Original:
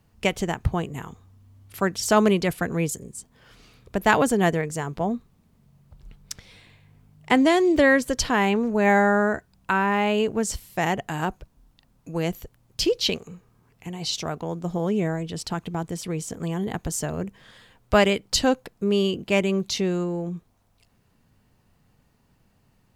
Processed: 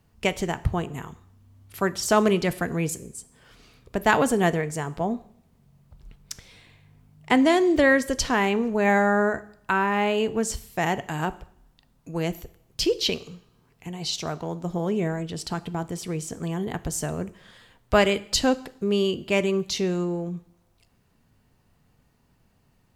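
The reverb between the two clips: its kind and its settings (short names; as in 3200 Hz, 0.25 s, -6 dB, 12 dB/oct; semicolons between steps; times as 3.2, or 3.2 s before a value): two-slope reverb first 0.62 s, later 1.6 s, from -25 dB, DRR 13.5 dB; gain -1 dB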